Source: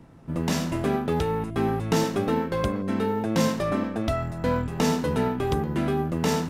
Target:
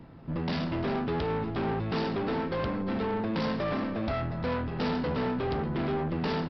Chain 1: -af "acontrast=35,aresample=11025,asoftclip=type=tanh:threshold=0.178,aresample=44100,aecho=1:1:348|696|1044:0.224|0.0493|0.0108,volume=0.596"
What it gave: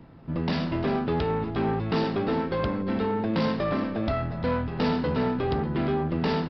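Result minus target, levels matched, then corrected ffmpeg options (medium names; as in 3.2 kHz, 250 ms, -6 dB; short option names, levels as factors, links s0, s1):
saturation: distortion -7 dB
-af "acontrast=35,aresample=11025,asoftclip=type=tanh:threshold=0.075,aresample=44100,aecho=1:1:348|696|1044:0.224|0.0493|0.0108,volume=0.596"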